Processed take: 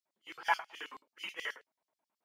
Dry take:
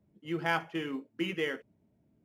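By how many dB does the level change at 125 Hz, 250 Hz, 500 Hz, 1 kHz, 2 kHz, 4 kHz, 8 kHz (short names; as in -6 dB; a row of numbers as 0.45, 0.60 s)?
under -30 dB, -26.5 dB, -14.5 dB, 0.0 dB, -2.5 dB, -3.0 dB, +0.5 dB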